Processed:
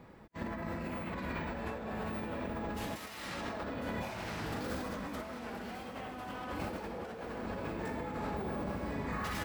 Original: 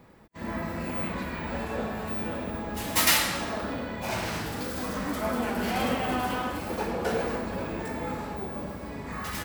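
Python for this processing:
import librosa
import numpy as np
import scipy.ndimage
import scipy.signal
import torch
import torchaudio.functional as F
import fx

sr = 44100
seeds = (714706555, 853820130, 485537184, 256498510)

y = fx.high_shelf(x, sr, hz=5800.0, db=-9.5)
y = fx.over_compress(y, sr, threshold_db=-36.0, ratio=-1.0)
y = fx.echo_thinned(y, sr, ms=1048, feedback_pct=55, hz=420.0, wet_db=-10.5)
y = F.gain(torch.from_numpy(y), -4.0).numpy()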